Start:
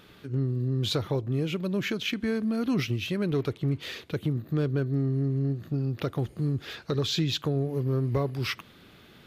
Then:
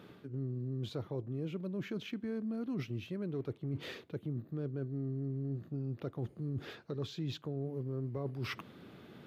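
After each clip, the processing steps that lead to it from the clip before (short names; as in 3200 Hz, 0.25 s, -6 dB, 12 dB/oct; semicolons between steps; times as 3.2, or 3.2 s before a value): HPF 120 Hz; tilt shelf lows +6.5 dB, about 1400 Hz; reverse; compressor 4:1, threshold -34 dBFS, peak gain reduction 14.5 dB; reverse; gain -3.5 dB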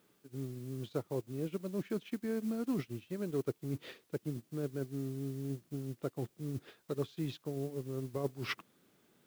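low shelf 110 Hz -12 dB; added noise white -61 dBFS; upward expander 2.5:1, over -51 dBFS; gain +7 dB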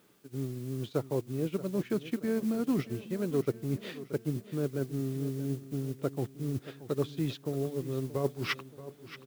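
feedback echo 0.628 s, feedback 50%, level -15 dB; gain +5.5 dB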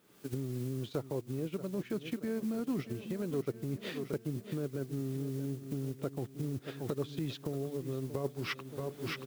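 recorder AGC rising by 59 dB/s; gain -5.5 dB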